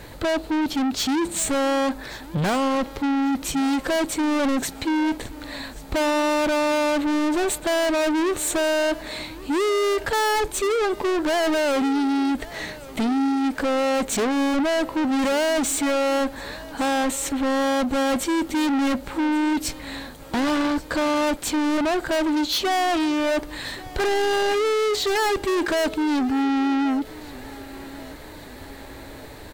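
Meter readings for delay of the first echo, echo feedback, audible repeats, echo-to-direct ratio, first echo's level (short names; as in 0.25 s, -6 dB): 1.133 s, 52%, 3, -18.0 dB, -19.5 dB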